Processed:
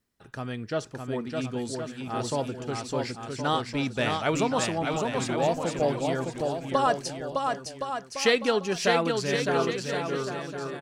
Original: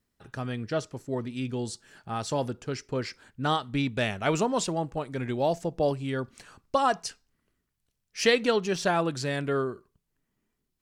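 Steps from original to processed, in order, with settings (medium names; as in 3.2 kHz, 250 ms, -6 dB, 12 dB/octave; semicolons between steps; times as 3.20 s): bass shelf 130 Hz -4.5 dB; on a send: bouncing-ball echo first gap 610 ms, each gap 0.75×, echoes 5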